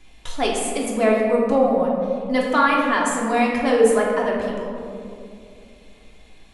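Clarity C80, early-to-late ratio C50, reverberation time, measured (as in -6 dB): 3.0 dB, 1.0 dB, 2.6 s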